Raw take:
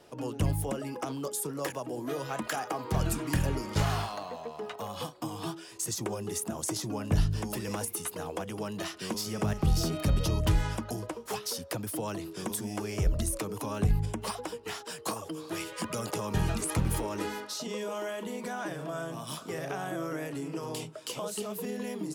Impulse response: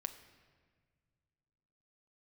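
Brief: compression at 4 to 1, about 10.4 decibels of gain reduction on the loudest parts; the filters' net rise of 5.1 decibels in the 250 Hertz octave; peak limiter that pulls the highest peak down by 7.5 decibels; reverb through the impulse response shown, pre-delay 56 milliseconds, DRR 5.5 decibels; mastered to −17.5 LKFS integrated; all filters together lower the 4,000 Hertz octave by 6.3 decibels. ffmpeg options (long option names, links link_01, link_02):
-filter_complex "[0:a]equalizer=frequency=250:width_type=o:gain=7,equalizer=frequency=4000:width_type=o:gain=-9,acompressor=threshold=-32dB:ratio=4,alimiter=level_in=4dB:limit=-24dB:level=0:latency=1,volume=-4dB,asplit=2[link_01][link_02];[1:a]atrim=start_sample=2205,adelay=56[link_03];[link_02][link_03]afir=irnorm=-1:irlink=0,volume=-3.5dB[link_04];[link_01][link_04]amix=inputs=2:normalize=0,volume=19.5dB"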